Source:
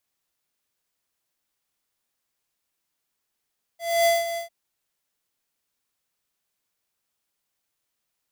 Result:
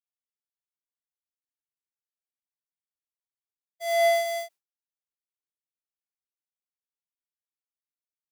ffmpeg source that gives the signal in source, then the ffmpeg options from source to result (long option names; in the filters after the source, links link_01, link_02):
-f lavfi -i "aevalsrc='0.126*(2*lt(mod(677*t,1),0.5)-1)':duration=0.699:sample_rate=44100,afade=type=in:duration=0.272,afade=type=out:start_time=0.272:duration=0.182:silence=0.282,afade=type=out:start_time=0.58:duration=0.119"
-filter_complex "[0:a]bass=frequency=250:gain=-9,treble=frequency=4000:gain=1,agate=range=-33dB:threshold=-43dB:ratio=3:detection=peak,acrossover=split=300|1800[link_01][link_02][link_03];[link_03]asoftclip=type=tanh:threshold=-26.5dB[link_04];[link_01][link_02][link_04]amix=inputs=3:normalize=0"